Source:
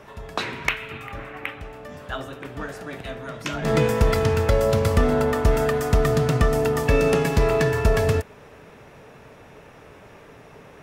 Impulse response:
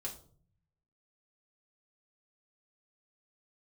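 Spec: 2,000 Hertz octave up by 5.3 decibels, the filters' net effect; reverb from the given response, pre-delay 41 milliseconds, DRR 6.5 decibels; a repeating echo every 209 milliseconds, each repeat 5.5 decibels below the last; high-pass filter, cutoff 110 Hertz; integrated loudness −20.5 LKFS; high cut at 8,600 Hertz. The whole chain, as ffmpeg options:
-filter_complex "[0:a]highpass=110,lowpass=8600,equalizer=frequency=2000:width_type=o:gain=6.5,aecho=1:1:209|418|627|836|1045|1254|1463:0.531|0.281|0.149|0.079|0.0419|0.0222|0.0118,asplit=2[link_01][link_02];[1:a]atrim=start_sample=2205,adelay=41[link_03];[link_02][link_03]afir=irnorm=-1:irlink=0,volume=-5.5dB[link_04];[link_01][link_04]amix=inputs=2:normalize=0,volume=-2.5dB"

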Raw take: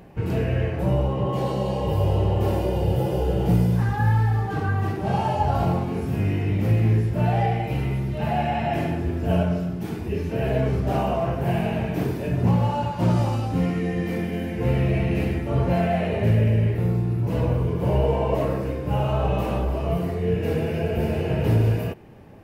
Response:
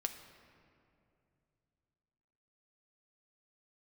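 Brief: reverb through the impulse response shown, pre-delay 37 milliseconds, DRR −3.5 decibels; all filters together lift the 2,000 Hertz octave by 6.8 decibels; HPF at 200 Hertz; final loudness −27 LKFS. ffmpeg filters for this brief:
-filter_complex "[0:a]highpass=200,equalizer=frequency=2000:width_type=o:gain=8.5,asplit=2[link_01][link_02];[1:a]atrim=start_sample=2205,adelay=37[link_03];[link_02][link_03]afir=irnorm=-1:irlink=0,volume=3.5dB[link_04];[link_01][link_04]amix=inputs=2:normalize=0,volume=-6dB"

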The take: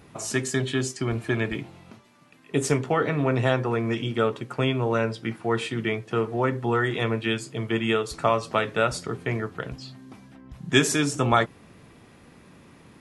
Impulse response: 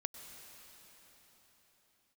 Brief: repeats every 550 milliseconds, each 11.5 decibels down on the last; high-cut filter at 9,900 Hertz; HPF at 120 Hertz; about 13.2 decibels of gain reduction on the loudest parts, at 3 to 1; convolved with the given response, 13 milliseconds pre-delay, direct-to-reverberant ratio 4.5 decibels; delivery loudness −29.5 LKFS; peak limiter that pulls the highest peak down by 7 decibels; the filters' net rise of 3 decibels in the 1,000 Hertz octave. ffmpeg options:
-filter_complex "[0:a]highpass=120,lowpass=9900,equalizer=frequency=1000:width_type=o:gain=4,acompressor=threshold=-31dB:ratio=3,alimiter=limit=-22.5dB:level=0:latency=1,aecho=1:1:550|1100|1650:0.266|0.0718|0.0194,asplit=2[link_01][link_02];[1:a]atrim=start_sample=2205,adelay=13[link_03];[link_02][link_03]afir=irnorm=-1:irlink=0,volume=-3dB[link_04];[link_01][link_04]amix=inputs=2:normalize=0,volume=4dB"

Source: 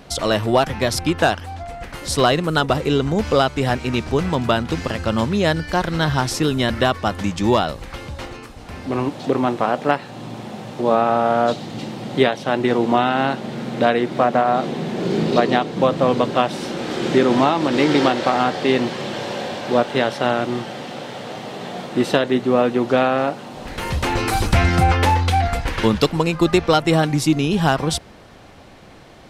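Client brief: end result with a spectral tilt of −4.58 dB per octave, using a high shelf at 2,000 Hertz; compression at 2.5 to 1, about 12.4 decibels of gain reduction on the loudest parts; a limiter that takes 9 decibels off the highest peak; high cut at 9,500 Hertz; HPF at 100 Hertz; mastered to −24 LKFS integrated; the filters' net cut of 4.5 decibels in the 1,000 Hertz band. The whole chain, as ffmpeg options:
ffmpeg -i in.wav -af "highpass=100,lowpass=9500,equalizer=frequency=1000:width_type=o:gain=-8,highshelf=frequency=2000:gain=5,acompressor=threshold=-31dB:ratio=2.5,volume=8.5dB,alimiter=limit=-13dB:level=0:latency=1" out.wav

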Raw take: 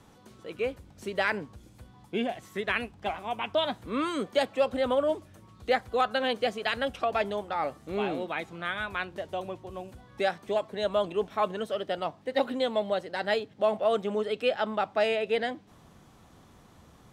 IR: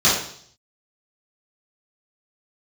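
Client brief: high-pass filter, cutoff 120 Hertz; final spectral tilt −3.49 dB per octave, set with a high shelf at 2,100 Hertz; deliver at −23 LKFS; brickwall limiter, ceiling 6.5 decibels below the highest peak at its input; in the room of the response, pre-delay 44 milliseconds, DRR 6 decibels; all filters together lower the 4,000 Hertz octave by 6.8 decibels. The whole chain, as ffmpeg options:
-filter_complex "[0:a]highpass=120,highshelf=frequency=2100:gain=-6,equalizer=frequency=4000:width_type=o:gain=-3.5,alimiter=limit=-21dB:level=0:latency=1,asplit=2[link_01][link_02];[1:a]atrim=start_sample=2205,adelay=44[link_03];[link_02][link_03]afir=irnorm=-1:irlink=0,volume=-26.5dB[link_04];[link_01][link_04]amix=inputs=2:normalize=0,volume=9dB"

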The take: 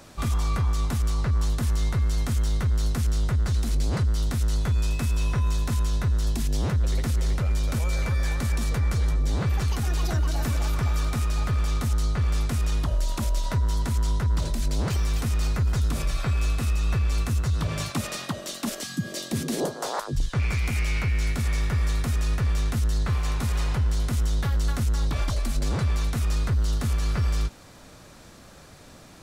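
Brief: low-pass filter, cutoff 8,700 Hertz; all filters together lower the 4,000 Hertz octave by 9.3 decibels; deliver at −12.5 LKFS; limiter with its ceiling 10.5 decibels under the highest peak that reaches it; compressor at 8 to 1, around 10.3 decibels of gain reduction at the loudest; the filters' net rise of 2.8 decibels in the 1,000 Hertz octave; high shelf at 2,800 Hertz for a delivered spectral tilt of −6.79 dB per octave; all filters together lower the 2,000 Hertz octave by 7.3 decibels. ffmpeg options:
ffmpeg -i in.wav -af "lowpass=8700,equalizer=frequency=1000:width_type=o:gain=7,equalizer=frequency=2000:width_type=o:gain=-8.5,highshelf=frequency=2800:gain=-7,equalizer=frequency=4000:width_type=o:gain=-3.5,acompressor=threshold=-31dB:ratio=8,volume=27dB,alimiter=limit=-4dB:level=0:latency=1" out.wav

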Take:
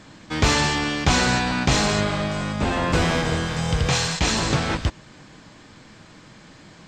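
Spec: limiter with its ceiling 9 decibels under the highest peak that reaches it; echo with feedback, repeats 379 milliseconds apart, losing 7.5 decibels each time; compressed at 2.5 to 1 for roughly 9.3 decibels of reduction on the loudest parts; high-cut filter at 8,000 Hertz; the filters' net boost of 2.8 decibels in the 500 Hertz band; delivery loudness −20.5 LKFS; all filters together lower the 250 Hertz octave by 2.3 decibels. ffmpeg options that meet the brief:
ffmpeg -i in.wav -af "lowpass=8000,equalizer=frequency=250:width_type=o:gain=-4.5,equalizer=frequency=500:width_type=o:gain=4.5,acompressor=threshold=-28dB:ratio=2.5,alimiter=limit=-21.5dB:level=0:latency=1,aecho=1:1:379|758|1137|1516|1895:0.422|0.177|0.0744|0.0312|0.0131,volume=10dB" out.wav

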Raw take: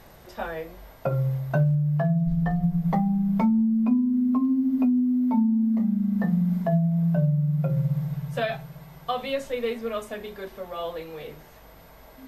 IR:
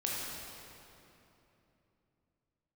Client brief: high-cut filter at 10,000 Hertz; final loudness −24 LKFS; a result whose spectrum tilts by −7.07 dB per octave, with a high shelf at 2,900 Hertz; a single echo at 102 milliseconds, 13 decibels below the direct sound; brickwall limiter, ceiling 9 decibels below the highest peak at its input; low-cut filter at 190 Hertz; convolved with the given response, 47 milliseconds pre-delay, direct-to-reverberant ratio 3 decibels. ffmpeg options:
-filter_complex "[0:a]highpass=190,lowpass=10000,highshelf=frequency=2900:gain=8,alimiter=limit=-21.5dB:level=0:latency=1,aecho=1:1:102:0.224,asplit=2[link_01][link_02];[1:a]atrim=start_sample=2205,adelay=47[link_03];[link_02][link_03]afir=irnorm=-1:irlink=0,volume=-8dB[link_04];[link_01][link_04]amix=inputs=2:normalize=0,volume=3.5dB"

